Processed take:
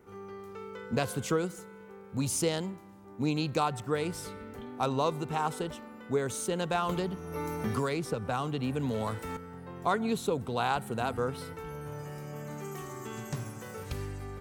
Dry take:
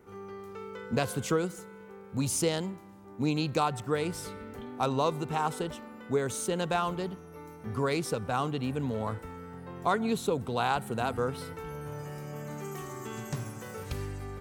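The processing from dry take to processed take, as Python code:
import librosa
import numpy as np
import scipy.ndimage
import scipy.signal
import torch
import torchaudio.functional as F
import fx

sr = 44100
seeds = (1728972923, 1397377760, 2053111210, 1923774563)

y = fx.band_squash(x, sr, depth_pct=100, at=(6.89, 9.37))
y = F.gain(torch.from_numpy(y), -1.0).numpy()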